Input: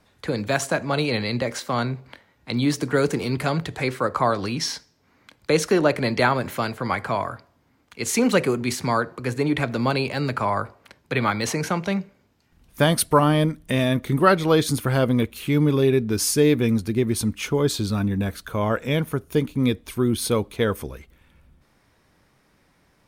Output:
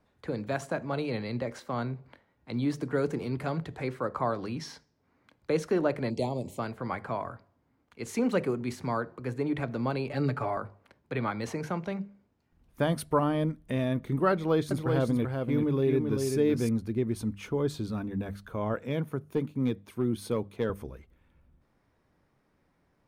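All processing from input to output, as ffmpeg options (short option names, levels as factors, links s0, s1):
-filter_complex "[0:a]asettb=1/sr,asplit=3[s0][s1][s2];[s0]atrim=end=6.104[s3];[s1]atrim=start=6.1:end=6.59,asetpts=PTS-STARTPTS,afade=t=in:d=0.004:c=qsin,afade=t=out:st=0.486:d=0.004:c=qsin,asuperstop=centerf=1500:order=4:qfactor=0.65,equalizer=f=7800:w=1.7:g=12[s4];[s2]atrim=start=6.586[s5];[s3][s4]acrossfade=d=0.004:c1=hsin:c2=qsin[s6];[s6][s5]acrossfade=d=0.004:c1=qsin:c2=hsin,asettb=1/sr,asplit=3[s7][s8][s9];[s7]atrim=end=10.094[s10];[s8]atrim=start=10.09:end=10.57,asetpts=PTS-STARTPTS,afade=t=in:d=0.004:c=qsin,afade=t=out:st=0.476:d=0.004:c=qsin,bandreject=f=1000:w=9.8,aecho=1:1:7:0.91,atrim=end_sample=21168[s11];[s9]atrim=start=10.566[s12];[s10][s11]acrossfade=d=0.004:c1=hsin:c2=qsin[s13];[s13][s12]acrossfade=d=0.004:c1=qsin:c2=hsin,asettb=1/sr,asplit=3[s14][s15][s16];[s14]atrim=end=14.324[s17];[s15]atrim=start=14.32:end=16.69,asetpts=PTS-STARTPTS,afade=t=in:d=0.004:c=qsin,afade=t=out:st=2.366:d=0.004:c=qsin,agate=range=0.0224:threshold=0.0447:ratio=3:release=100:detection=peak,aecho=1:1:386:0.596,atrim=end_sample=104517[s18];[s16]atrim=start=16.686[s19];[s17][s18]acrossfade=d=0.004:c1=hsin:c2=qsin[s20];[s20][s19]acrossfade=d=0.004:c1=qsin:c2=hsin,asettb=1/sr,asplit=3[s21][s22][s23];[s21]atrim=end=18.744[s24];[s22]atrim=start=18.74:end=20.7,asetpts=PTS-STARTPTS,afade=t=in:d=0.004:c=qsin,afade=t=out:st=1.956:d=0.004:c=qsin,highpass=f=96:w=0.5412,highpass=f=96:w=1.3066,volume=3.98,asoftclip=hard,volume=0.251[s25];[s23]atrim=start=20.696[s26];[s24][s25]acrossfade=d=0.004:c1=hsin:c2=qsin[s27];[s27][s26]acrossfade=d=0.004:c1=qsin:c2=hsin,highshelf=f=2000:g=-11.5,bandreject=f=50:t=h:w=6,bandreject=f=100:t=h:w=6,bandreject=f=150:t=h:w=6,bandreject=f=200:t=h:w=6,volume=0.447"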